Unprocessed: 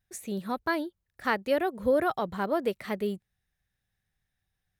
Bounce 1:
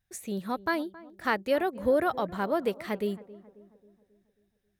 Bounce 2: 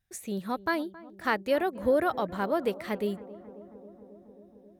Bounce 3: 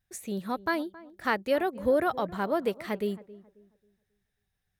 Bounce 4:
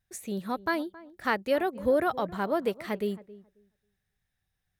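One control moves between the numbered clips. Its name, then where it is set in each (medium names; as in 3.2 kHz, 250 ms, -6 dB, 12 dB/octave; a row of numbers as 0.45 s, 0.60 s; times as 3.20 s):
filtered feedback delay, feedback: 53%, 84%, 32%, 17%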